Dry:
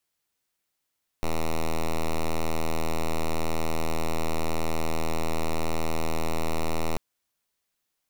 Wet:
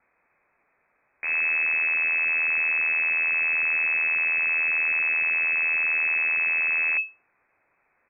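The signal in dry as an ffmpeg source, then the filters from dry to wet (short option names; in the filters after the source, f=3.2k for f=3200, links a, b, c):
-f lavfi -i "aevalsrc='0.0631*(2*lt(mod(80.9*t,1),0.05)-1)':d=5.74:s=44100"
-af "aresample=11025,aeval=exprs='0.075*sin(PI/2*6.31*val(0)/0.075)':c=same,aresample=44100,lowpass=f=2.2k:t=q:w=0.5098,lowpass=f=2.2k:t=q:w=0.6013,lowpass=f=2.2k:t=q:w=0.9,lowpass=f=2.2k:t=q:w=2.563,afreqshift=-2600"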